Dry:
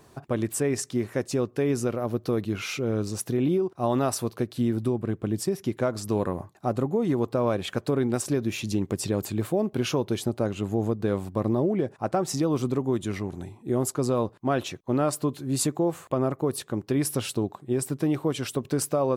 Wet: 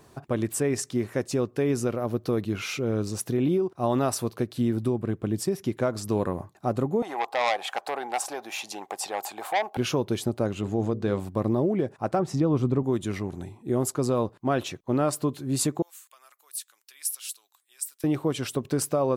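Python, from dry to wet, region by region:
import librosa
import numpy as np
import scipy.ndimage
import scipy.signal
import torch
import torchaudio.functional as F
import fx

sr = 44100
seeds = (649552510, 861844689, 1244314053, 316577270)

y = fx.chain(x, sr, fx.highpass_res(hz=790.0, q=7.8),
    fx.transformer_sat(knee_hz=2500.0), at=(7.02, 9.77))
y = fx.chain(y, sr, fx.lowpass(hz=6200.0, slope=12),
    fx.high_shelf(hz=4200.0, db=5.5),
    fx.hum_notches(base_hz=60, count=10), at=(10.61, 11.2))
y = fx.chain(y, sr, fx.lowpass(hz=2000.0, slope=6),
    fx.peak_eq(hz=68.0, db=7.5, octaves=2.4), at=(12.19, 12.83))
y = fx.chain(y, sr, fx.highpass(hz=1400.0, slope=12),
    fx.differentiator(), at=(15.82, 18.04))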